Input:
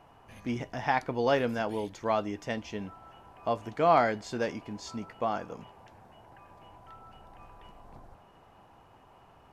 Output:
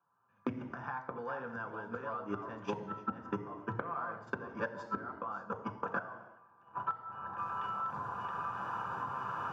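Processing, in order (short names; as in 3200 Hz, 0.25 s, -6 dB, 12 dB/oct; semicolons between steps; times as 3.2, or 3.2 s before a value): reverse delay 0.568 s, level -5 dB; recorder AGC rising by 12 dB/s; soft clip -12 dBFS, distortion -27 dB; high shelf 3000 Hz -11.5 dB, from 7.38 s +2.5 dB; gate -35 dBFS, range -38 dB; HPF 100 Hz 24 dB/oct; band shelf 1200 Hz +15.5 dB 1 oct; flipped gate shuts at -19 dBFS, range -27 dB; reverb RT60 0.65 s, pre-delay 3 ms, DRR 4.5 dB; compressor 6:1, threshold -35 dBFS, peak gain reduction 17 dB; gain +1 dB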